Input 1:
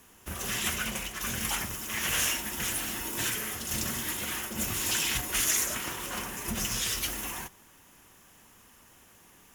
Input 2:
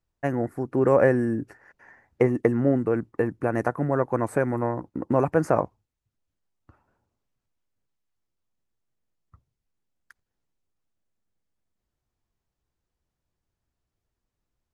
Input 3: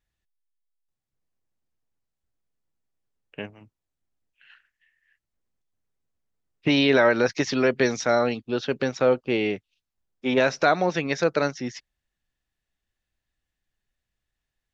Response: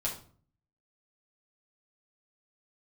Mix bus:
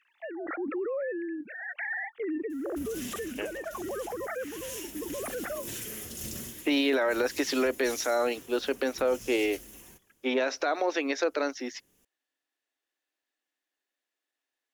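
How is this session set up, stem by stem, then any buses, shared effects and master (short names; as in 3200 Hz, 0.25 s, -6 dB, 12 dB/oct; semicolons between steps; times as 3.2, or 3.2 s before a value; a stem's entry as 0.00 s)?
-13.0 dB, 2.50 s, bus A, no send, resonant low shelf 670 Hz +9.5 dB, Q 1.5; auto duck -9 dB, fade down 0.25 s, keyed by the third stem
-10.0 dB, 0.00 s, bus A, no send, sine-wave speech; bell 960 Hz -13.5 dB 0.21 oct; backwards sustainer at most 28 dB/s
-0.5 dB, 0.00 s, no bus, no send, elliptic high-pass 270 Hz, stop band 40 dB
bus A: 0.0 dB, high shelf 2300 Hz +9.5 dB; limiter -27 dBFS, peak gain reduction 10 dB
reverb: off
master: limiter -18 dBFS, peak gain reduction 9.5 dB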